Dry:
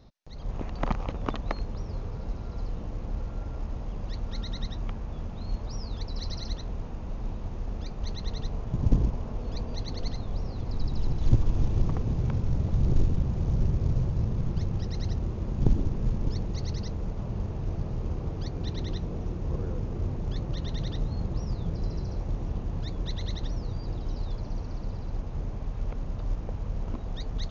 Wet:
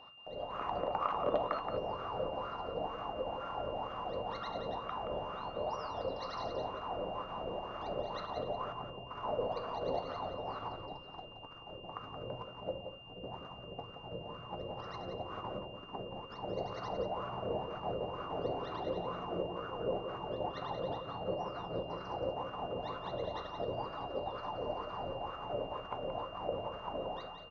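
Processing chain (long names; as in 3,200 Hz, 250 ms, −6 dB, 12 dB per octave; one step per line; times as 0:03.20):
fade-out on the ending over 0.58 s
compressor whose output falls as the input rises −32 dBFS, ratio −1
on a send at −5.5 dB: convolution reverb RT60 0.40 s, pre-delay 3 ms
on the sum: LFO wah 2.1 Hz 530–1,300 Hz, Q 5.4
steady tone 2,800 Hz −68 dBFS
single-tap delay 175 ms −8 dB
level +12.5 dB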